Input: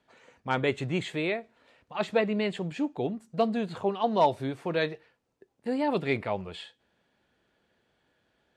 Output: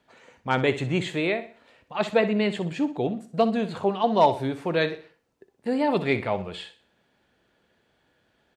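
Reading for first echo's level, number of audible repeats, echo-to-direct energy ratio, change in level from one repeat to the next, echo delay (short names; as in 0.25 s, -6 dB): -13.0 dB, 3, -12.5 dB, -8.5 dB, 62 ms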